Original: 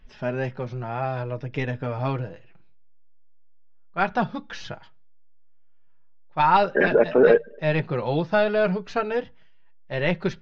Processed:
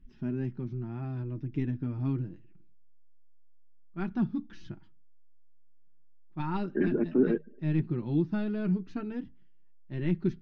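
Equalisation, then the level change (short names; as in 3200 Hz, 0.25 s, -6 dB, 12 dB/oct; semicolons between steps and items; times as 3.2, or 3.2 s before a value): EQ curve 130 Hz 0 dB, 220 Hz +4 dB, 340 Hz +5 dB, 510 Hz -22 dB, 1100 Hz -15 dB; -3.5 dB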